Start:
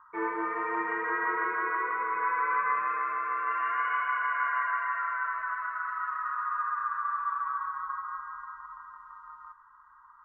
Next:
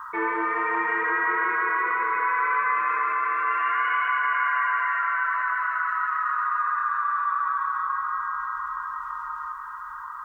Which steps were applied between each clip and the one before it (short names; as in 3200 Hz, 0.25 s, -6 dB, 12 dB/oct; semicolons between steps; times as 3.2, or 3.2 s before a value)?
high shelf 2000 Hz +11.5 dB; diffused feedback echo 0.525 s, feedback 48%, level -13 dB; fast leveller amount 50%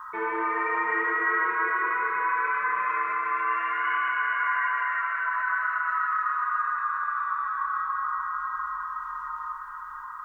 shoebox room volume 2800 m³, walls mixed, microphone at 1.4 m; gain -4 dB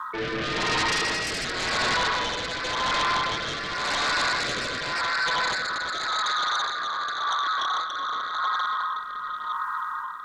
resonant low shelf 130 Hz -13 dB, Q 1.5; sine folder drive 13 dB, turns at -14 dBFS; rotary speaker horn 0.9 Hz; gain -6.5 dB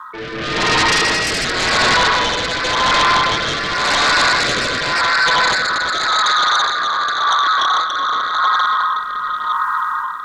AGC gain up to 11 dB